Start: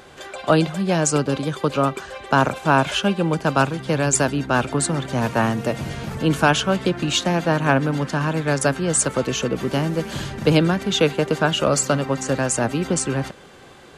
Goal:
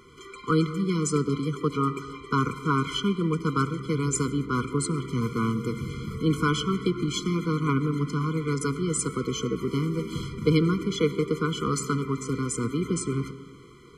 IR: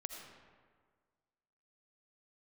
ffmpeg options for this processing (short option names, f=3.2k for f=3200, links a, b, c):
-filter_complex "[0:a]asplit=2[a][b];[1:a]atrim=start_sample=2205,lowshelf=f=92:g=2.5,highshelf=f=4.4k:g=-9[c];[b][c]afir=irnorm=-1:irlink=0,volume=-3dB[d];[a][d]amix=inputs=2:normalize=0,afftfilt=real='re*eq(mod(floor(b*sr/1024/490),2),0)':imag='im*eq(mod(floor(b*sr/1024/490),2),0)':win_size=1024:overlap=0.75,volume=-7.5dB"